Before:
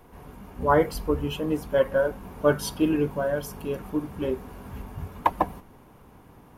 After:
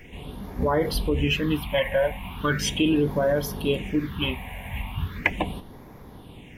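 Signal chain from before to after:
all-pass phaser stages 6, 0.38 Hz, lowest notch 340–2,800 Hz
brickwall limiter −21 dBFS, peak gain reduction 11 dB
flat-topped bell 2,600 Hz +12.5 dB 1.3 octaves
level +6.5 dB

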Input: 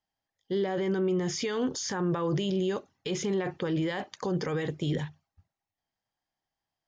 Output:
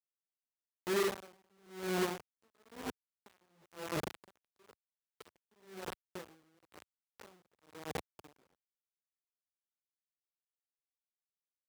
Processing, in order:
mains-hum notches 50/100/150/200/250/300/350 Hz
auto-filter notch square 2.7 Hz 950–2,500 Hz
time stretch by phase vocoder 1.7×
high-shelf EQ 5,900 Hz −8.5 dB
far-end echo of a speakerphone 100 ms, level −20 dB
on a send at −10 dB: convolution reverb RT60 1.6 s, pre-delay 49 ms
on the sum: treble cut that deepens with the level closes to 1,000 Hz, closed at −30.5 dBFS
bit reduction 5 bits
high-pass filter 78 Hz 12 dB per octave
parametric band 150 Hz −6 dB 0.94 octaves
tremolo with a sine in dB 1 Hz, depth 39 dB
level −2 dB

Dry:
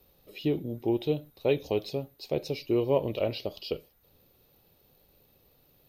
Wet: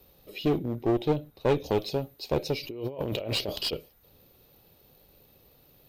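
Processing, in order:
0:00.58–0:01.64: high-shelf EQ 3,200 Hz −7.5 dB
0:02.63–0:03.73: compressor whose output falls as the input rises −37 dBFS, ratio −1
asymmetric clip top −31.5 dBFS
level +4.5 dB

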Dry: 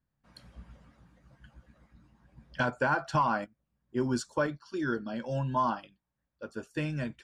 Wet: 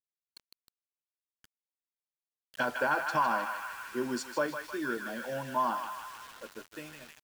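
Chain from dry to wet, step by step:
fade-out on the ending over 1.09 s
high-pass filter 280 Hz 12 dB per octave
feedback echo with a band-pass in the loop 156 ms, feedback 84%, band-pass 2,200 Hz, level −4 dB
bit-depth reduction 8 bits, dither none
level −1 dB

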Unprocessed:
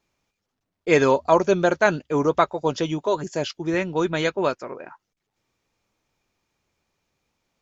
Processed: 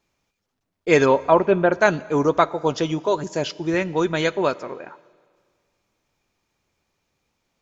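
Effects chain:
0:01.05–0:01.72: low-pass filter 4,000 Hz → 2,500 Hz 24 dB per octave
four-comb reverb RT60 1.8 s, combs from 28 ms, DRR 19.5 dB
level +1.5 dB

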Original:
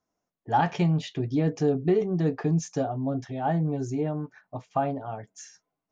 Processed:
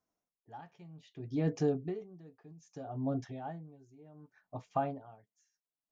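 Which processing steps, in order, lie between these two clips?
0:02.52–0:02.95: downward compressor, threshold −26 dBFS, peak gain reduction 6.5 dB
tremolo with a sine in dB 0.64 Hz, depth 25 dB
level −5 dB

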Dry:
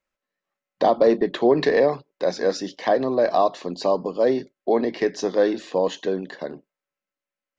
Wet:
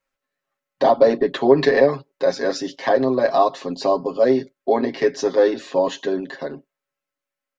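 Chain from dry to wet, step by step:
parametric band 1,400 Hz +2 dB
comb filter 7.4 ms, depth 88%

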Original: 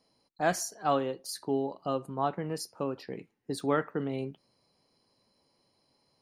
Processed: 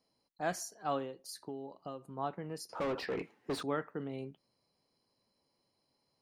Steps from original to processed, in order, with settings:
0:01.04–0:02.15: downward compressor, threshold −32 dBFS, peak gain reduction 7.5 dB
0:02.69–0:03.63: mid-hump overdrive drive 31 dB, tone 1,800 Hz, clips at −19 dBFS
level −7.5 dB

